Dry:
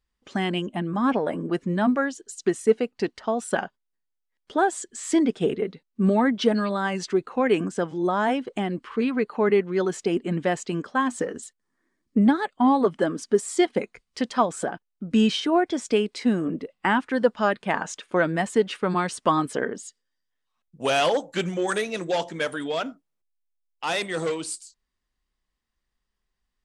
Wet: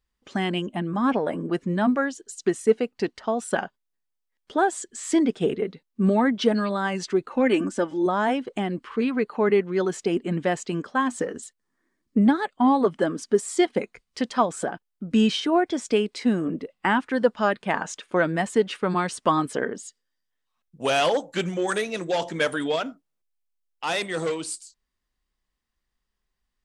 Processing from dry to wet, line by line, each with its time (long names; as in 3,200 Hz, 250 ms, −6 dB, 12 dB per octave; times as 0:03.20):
0:07.30–0:08.06: comb filter 3.4 ms
0:22.22–0:22.76: clip gain +3.5 dB